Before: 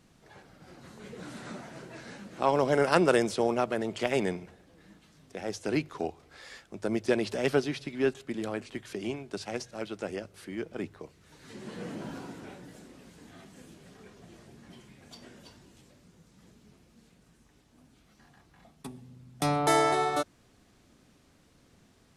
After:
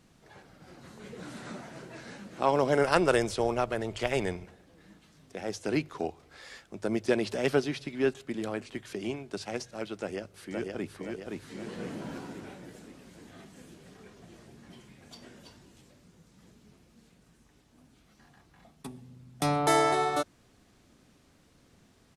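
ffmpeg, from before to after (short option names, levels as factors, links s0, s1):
-filter_complex "[0:a]asplit=3[s0][s1][s2];[s0]afade=t=out:st=2.83:d=0.02[s3];[s1]asubboost=boost=9.5:cutoff=69,afade=t=in:st=2.83:d=0.02,afade=t=out:st=4.44:d=0.02[s4];[s2]afade=t=in:st=4.44:d=0.02[s5];[s3][s4][s5]amix=inputs=3:normalize=0,asplit=2[s6][s7];[s7]afade=t=in:st=9.97:d=0.01,afade=t=out:st=10.94:d=0.01,aecho=0:1:520|1040|1560|2080|2600|3120|3640|4160:0.707946|0.38937|0.214154|0.117784|0.0647815|0.0356298|0.0195964|0.010778[s8];[s6][s8]amix=inputs=2:normalize=0"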